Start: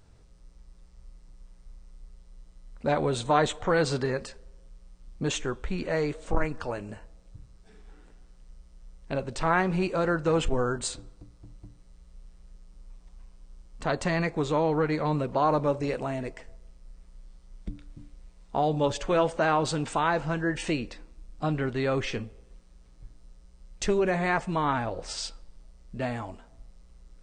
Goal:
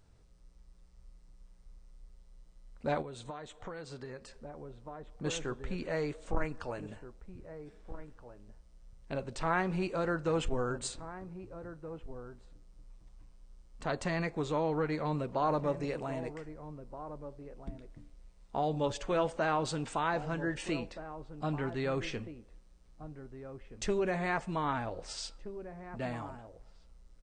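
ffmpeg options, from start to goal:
ffmpeg -i in.wav -filter_complex "[0:a]asplit=2[link_01][link_02];[link_02]adelay=1574,volume=-12dB,highshelf=frequency=4000:gain=-35.4[link_03];[link_01][link_03]amix=inputs=2:normalize=0,asplit=3[link_04][link_05][link_06];[link_04]afade=type=out:start_time=3.01:duration=0.02[link_07];[link_05]acompressor=threshold=-34dB:ratio=12,afade=type=in:start_time=3.01:duration=0.02,afade=type=out:start_time=5.23:duration=0.02[link_08];[link_06]afade=type=in:start_time=5.23:duration=0.02[link_09];[link_07][link_08][link_09]amix=inputs=3:normalize=0,volume=-6.5dB" out.wav

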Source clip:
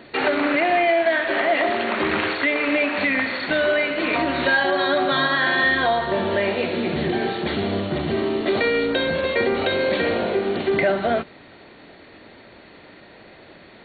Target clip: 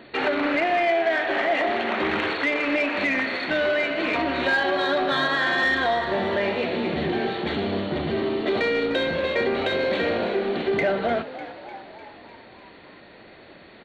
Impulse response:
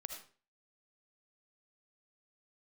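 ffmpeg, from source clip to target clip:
-filter_complex "[0:a]bandreject=frequency=50:width_type=h:width=6,bandreject=frequency=100:width_type=h:width=6,bandreject=frequency=150:width_type=h:width=6,asplit=2[link_01][link_02];[link_02]asoftclip=type=tanh:threshold=-18.5dB,volume=-4dB[link_03];[link_01][link_03]amix=inputs=2:normalize=0,asplit=7[link_04][link_05][link_06][link_07][link_08][link_09][link_10];[link_05]adelay=300,afreqshift=62,volume=-13.5dB[link_11];[link_06]adelay=600,afreqshift=124,volume=-17.9dB[link_12];[link_07]adelay=900,afreqshift=186,volume=-22.4dB[link_13];[link_08]adelay=1200,afreqshift=248,volume=-26.8dB[link_14];[link_09]adelay=1500,afreqshift=310,volume=-31.2dB[link_15];[link_10]adelay=1800,afreqshift=372,volume=-35.7dB[link_16];[link_04][link_11][link_12][link_13][link_14][link_15][link_16]amix=inputs=7:normalize=0,volume=-6dB"

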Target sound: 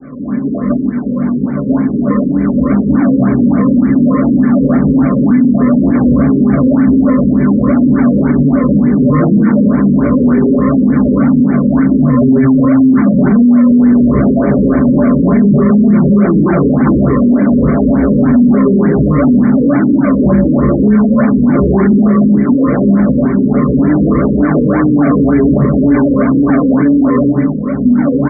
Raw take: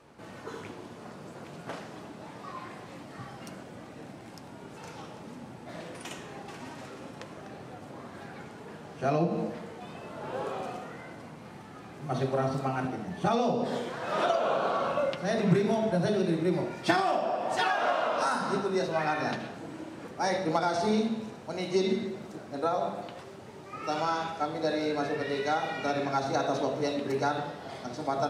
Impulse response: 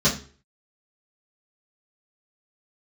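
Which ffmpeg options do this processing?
-filter_complex "[0:a]asplit=2[link_01][link_02];[link_02]acompressor=threshold=-40dB:ratio=6,volume=1dB[link_03];[link_01][link_03]amix=inputs=2:normalize=0,asplit=3[link_04][link_05][link_06];[link_04]bandpass=frequency=270:width_type=q:width=8,volume=0dB[link_07];[link_05]bandpass=frequency=2290:width_type=q:width=8,volume=-6dB[link_08];[link_06]bandpass=frequency=3010:width_type=q:width=8,volume=-9dB[link_09];[link_07][link_08][link_09]amix=inputs=3:normalize=0,dynaudnorm=framelen=490:gausssize=11:maxgain=11dB,aresample=16000,acrusher=samples=14:mix=1:aa=0.000001:lfo=1:lforange=14:lforate=2,aresample=44100[link_10];[1:a]atrim=start_sample=2205,asetrate=43659,aresample=44100[link_11];[link_10][link_11]afir=irnorm=-1:irlink=0,alimiter=level_in=13dB:limit=-1dB:release=50:level=0:latency=1,afftfilt=real='re*lt(b*sr/1024,540*pow(2400/540,0.5+0.5*sin(2*PI*3.4*pts/sr)))':imag='im*lt(b*sr/1024,540*pow(2400/540,0.5+0.5*sin(2*PI*3.4*pts/sr)))':win_size=1024:overlap=0.75,volume=-1dB"

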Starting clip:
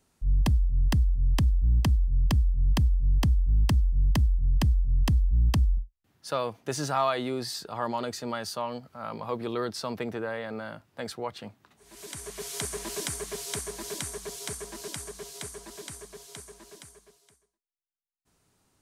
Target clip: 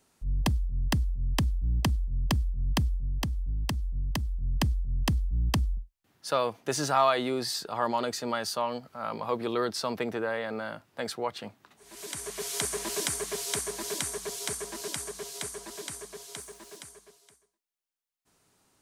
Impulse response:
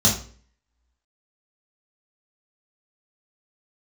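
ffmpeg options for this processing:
-filter_complex "[0:a]lowshelf=frequency=150:gain=-9.5,asettb=1/sr,asplit=3[link_01][link_02][link_03];[link_01]atrim=end=2.964[link_04];[link_02]atrim=start=2.96:end=4.39,asetpts=PTS-STARTPTS,afade=type=in:duration=0.004:curve=qsin,afade=type=out:start_time=1.426:duration=0.004:curve=qsin,acompressor=threshold=-30dB:ratio=6[link_05];[link_03]atrim=start=4.386[link_06];[link_04][link_05]acrossfade=duration=0.004:curve1=hsin:curve2=qsin[link_07];[link_07][link_06]acrossfade=duration=0.004:curve1=qsin:curve2=hsin,asettb=1/sr,asplit=3[link_08][link_09][link_10];[link_08]atrim=end=16.384[link_11];[link_09]atrim=start=16.38:end=16.78,asetpts=PTS-STARTPTS,afade=type=in:duration=0.004:curve=qsin,afade=type=out:start_time=0.396:duration=0.004:curve=qsin,aeval=exprs='val(0)*gte(abs(val(0)),0.00141)':channel_layout=same[link_12];[link_10]atrim=start=16.776[link_13];[link_11][link_12]acrossfade=duration=0.004:curve1=hsin:curve2=qsin[link_14];[link_14][link_13]acrossfade=duration=0.004:curve1=qsin:curve2=hsin,volume=3dB"

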